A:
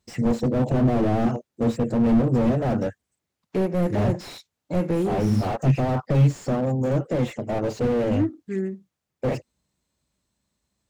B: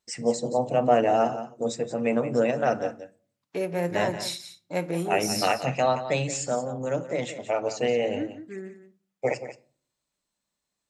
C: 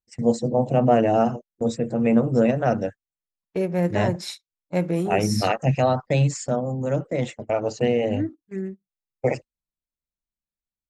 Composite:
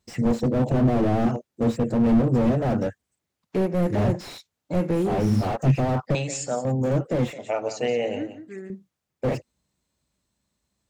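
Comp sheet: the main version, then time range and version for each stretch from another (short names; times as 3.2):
A
6.15–6.65 from B
7.33–8.7 from B
not used: C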